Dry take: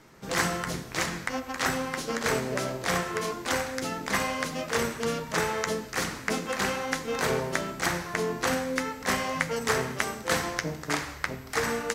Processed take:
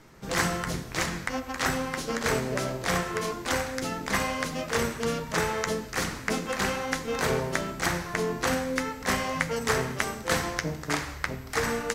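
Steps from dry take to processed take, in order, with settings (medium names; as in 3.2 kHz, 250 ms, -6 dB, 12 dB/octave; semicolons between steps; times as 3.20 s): bass shelf 84 Hz +9.5 dB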